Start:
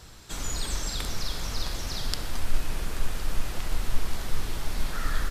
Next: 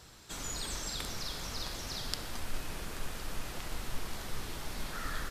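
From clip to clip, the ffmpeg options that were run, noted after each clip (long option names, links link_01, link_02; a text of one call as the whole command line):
ffmpeg -i in.wav -af "lowshelf=frequency=69:gain=-10,volume=-4.5dB" out.wav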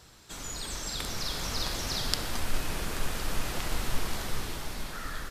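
ffmpeg -i in.wav -af "dynaudnorm=framelen=200:gausssize=11:maxgain=8dB" out.wav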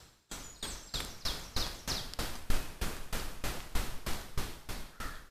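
ffmpeg -i in.wav -af "aeval=exprs='val(0)*pow(10,-22*if(lt(mod(3.2*n/s,1),2*abs(3.2)/1000),1-mod(3.2*n/s,1)/(2*abs(3.2)/1000),(mod(3.2*n/s,1)-2*abs(3.2)/1000)/(1-2*abs(3.2)/1000))/20)':channel_layout=same,volume=1dB" out.wav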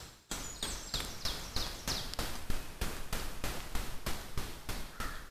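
ffmpeg -i in.wav -af "acompressor=threshold=-47dB:ratio=2,volume=8dB" out.wav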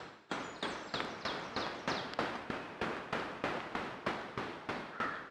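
ffmpeg -i in.wav -af "highpass=240,lowpass=2100,volume=7dB" out.wav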